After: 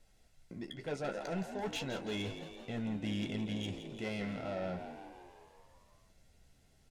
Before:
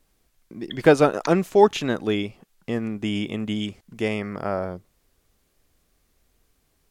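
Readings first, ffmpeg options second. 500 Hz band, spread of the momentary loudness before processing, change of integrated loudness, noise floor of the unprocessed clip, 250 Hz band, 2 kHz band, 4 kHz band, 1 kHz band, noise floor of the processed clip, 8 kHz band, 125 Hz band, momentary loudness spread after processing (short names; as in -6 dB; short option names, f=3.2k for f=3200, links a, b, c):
-19.5 dB, 17 LU, -16.5 dB, -68 dBFS, -13.5 dB, -14.5 dB, -10.5 dB, -18.5 dB, -67 dBFS, -11.5 dB, -11.5 dB, 11 LU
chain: -filter_complex "[0:a]lowpass=9k,aecho=1:1:1.5:0.44,areverse,acompressor=threshold=-29dB:ratio=10,areverse,asoftclip=type=tanh:threshold=-31.5dB,flanger=delay=9.1:depth=7.2:regen=-37:speed=0.33:shape=sinusoidal,asuperstop=centerf=1200:order=4:qfactor=5.9,asplit=2[a][b];[b]asplit=8[c][d][e][f][g][h][i][j];[c]adelay=168,afreqshift=59,volume=-10dB[k];[d]adelay=336,afreqshift=118,volume=-13.9dB[l];[e]adelay=504,afreqshift=177,volume=-17.8dB[m];[f]adelay=672,afreqshift=236,volume=-21.6dB[n];[g]adelay=840,afreqshift=295,volume=-25.5dB[o];[h]adelay=1008,afreqshift=354,volume=-29.4dB[p];[i]adelay=1176,afreqshift=413,volume=-33.3dB[q];[j]adelay=1344,afreqshift=472,volume=-37.1dB[r];[k][l][m][n][o][p][q][r]amix=inputs=8:normalize=0[s];[a][s]amix=inputs=2:normalize=0,volume=2dB"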